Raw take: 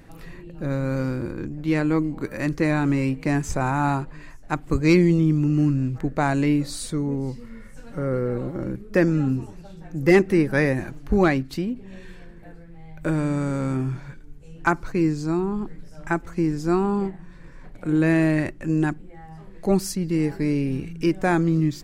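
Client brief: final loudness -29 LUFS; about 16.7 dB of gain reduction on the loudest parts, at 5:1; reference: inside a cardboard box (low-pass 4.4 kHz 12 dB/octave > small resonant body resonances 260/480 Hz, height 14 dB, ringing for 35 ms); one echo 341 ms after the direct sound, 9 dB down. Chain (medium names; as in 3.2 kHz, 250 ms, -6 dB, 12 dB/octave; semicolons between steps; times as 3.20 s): compression 5:1, threshold -31 dBFS; low-pass 4.4 kHz 12 dB/octave; delay 341 ms -9 dB; small resonant body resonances 260/480 Hz, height 14 dB, ringing for 35 ms; trim -2.5 dB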